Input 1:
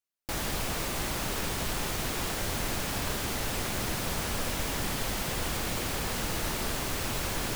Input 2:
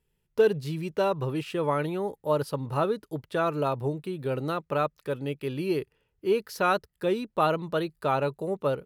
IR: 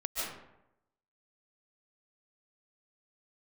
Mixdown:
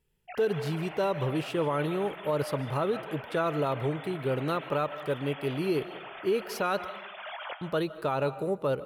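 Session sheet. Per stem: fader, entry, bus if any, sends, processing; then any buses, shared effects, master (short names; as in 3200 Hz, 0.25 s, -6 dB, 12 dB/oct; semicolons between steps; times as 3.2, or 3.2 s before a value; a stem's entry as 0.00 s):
-9.5 dB, 0.00 s, send -10.5 dB, sine-wave speech; auto duck -12 dB, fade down 0.70 s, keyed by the second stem
-0.5 dB, 0.00 s, muted 6.99–7.61, send -20 dB, dry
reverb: on, RT60 0.85 s, pre-delay 0.105 s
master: limiter -19 dBFS, peak gain reduction 7.5 dB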